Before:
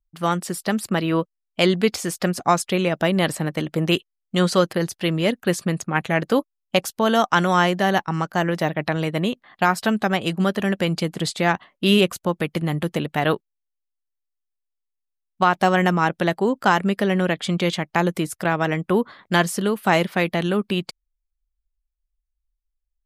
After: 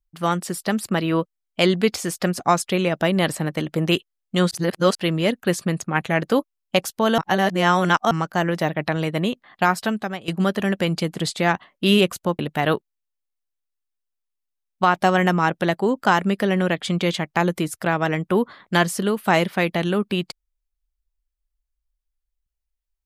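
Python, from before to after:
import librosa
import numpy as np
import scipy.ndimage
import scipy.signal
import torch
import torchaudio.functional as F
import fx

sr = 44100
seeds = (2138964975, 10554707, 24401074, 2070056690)

y = fx.edit(x, sr, fx.reverse_span(start_s=4.51, length_s=0.44),
    fx.reverse_span(start_s=7.18, length_s=0.93),
    fx.fade_out_to(start_s=9.71, length_s=0.57, floor_db=-15.5),
    fx.cut(start_s=12.39, length_s=0.59), tone=tone)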